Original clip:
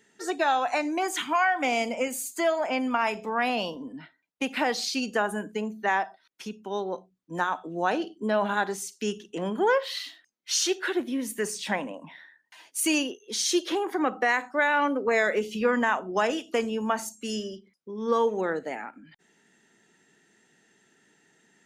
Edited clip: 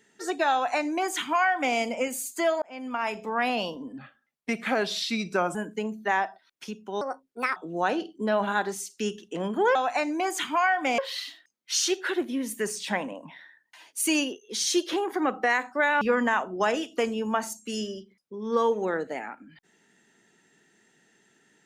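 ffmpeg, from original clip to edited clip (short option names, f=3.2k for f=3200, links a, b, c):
-filter_complex "[0:a]asplit=9[a][b][c][d][e][f][g][h][i];[a]atrim=end=2.62,asetpts=PTS-STARTPTS,afade=t=out:st=2.616:d=0.004:c=hsin[j];[b]atrim=start=2.62:end=3.984,asetpts=PTS-STARTPTS,afade=t=in:d=0.86:c=qsin[k];[c]atrim=start=3.98:end=5.33,asetpts=PTS-STARTPTS,asetrate=37926,aresample=44100[l];[d]atrim=start=5.326:end=6.794[m];[e]atrim=start=6.79:end=7.58,asetpts=PTS-STARTPTS,asetrate=63063,aresample=44100[n];[f]atrim=start=7.576:end=9.772[o];[g]atrim=start=0.528:end=1.762[p];[h]atrim=start=9.768:end=14.802[q];[i]atrim=start=15.568[r];[j][k]concat=n=2:v=0:a=1[s];[s][l]acrossfade=d=0.004:c1=hsin:c2=hsin[t];[t][m]acrossfade=d=0.004:c1=hsin:c2=hsin[u];[u][n]acrossfade=d=0.004:c1=hsin:c2=hsin[v];[v][o]acrossfade=d=0.004:c1=hsin:c2=hsin[w];[w][p]acrossfade=d=0.004:c1=hsin:c2=hsin[x];[x][q]acrossfade=d=0.004:c1=hsin:c2=hsin[y];[y][r]acrossfade=d=0.004:c1=hsin:c2=hsin"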